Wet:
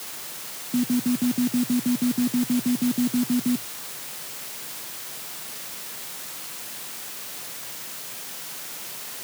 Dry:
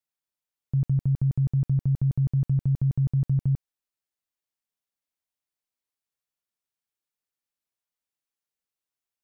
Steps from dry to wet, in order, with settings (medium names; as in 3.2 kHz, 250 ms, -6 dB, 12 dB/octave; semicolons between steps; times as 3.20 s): word length cut 6-bit, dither triangular; modulation noise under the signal 14 dB; frequency shift +110 Hz